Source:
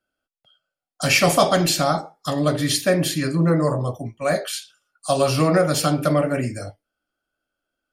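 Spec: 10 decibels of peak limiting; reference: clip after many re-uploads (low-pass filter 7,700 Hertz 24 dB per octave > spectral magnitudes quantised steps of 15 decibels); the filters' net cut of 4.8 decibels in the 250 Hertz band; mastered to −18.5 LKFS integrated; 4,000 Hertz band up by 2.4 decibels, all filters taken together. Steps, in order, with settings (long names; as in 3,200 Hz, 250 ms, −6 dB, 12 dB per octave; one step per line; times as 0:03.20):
parametric band 250 Hz −8 dB
parametric band 4,000 Hz +3 dB
brickwall limiter −13 dBFS
low-pass filter 7,700 Hz 24 dB per octave
spectral magnitudes quantised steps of 15 dB
level +6 dB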